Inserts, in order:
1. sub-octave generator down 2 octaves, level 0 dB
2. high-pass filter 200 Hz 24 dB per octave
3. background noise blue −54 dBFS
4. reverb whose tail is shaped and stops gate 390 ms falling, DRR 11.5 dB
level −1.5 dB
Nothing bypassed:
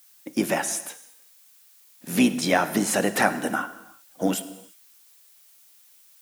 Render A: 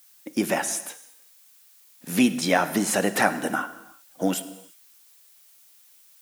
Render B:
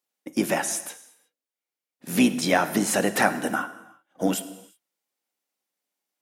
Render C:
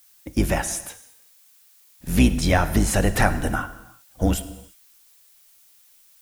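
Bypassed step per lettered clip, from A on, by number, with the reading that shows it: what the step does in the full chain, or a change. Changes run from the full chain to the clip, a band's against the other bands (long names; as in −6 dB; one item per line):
1, change in momentary loudness spread +3 LU
3, change in momentary loudness spread −3 LU
2, 125 Hz band +12.5 dB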